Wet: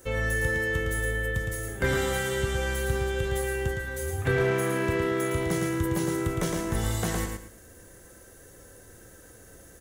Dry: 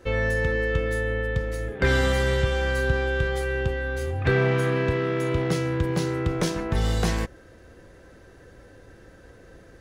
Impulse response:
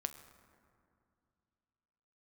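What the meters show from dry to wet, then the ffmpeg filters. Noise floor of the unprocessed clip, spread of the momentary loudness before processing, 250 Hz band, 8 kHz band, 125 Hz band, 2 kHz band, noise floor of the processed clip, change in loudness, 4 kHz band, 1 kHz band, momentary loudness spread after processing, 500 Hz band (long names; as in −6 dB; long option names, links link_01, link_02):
−50 dBFS, 6 LU, −2.0 dB, +5.0 dB, −4.5 dB, −2.0 dB, −51 dBFS, −3.0 dB, −3.5 dB, −2.0 dB, 5 LU, −3.5 dB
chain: -filter_complex "[0:a]acrossover=split=3500[link_01][link_02];[link_02]acompressor=threshold=-49dB:ratio=4:attack=1:release=60[link_03];[link_01][link_03]amix=inputs=2:normalize=0,highshelf=frequency=5400:gain=10,bandreject=frequency=2500:width=13,aexciter=amount=2.9:drive=8.2:freq=6400,flanger=delay=7.3:depth=3.4:regen=-73:speed=0.47:shape=triangular,aecho=1:1:112|224|336:0.596|0.149|0.0372"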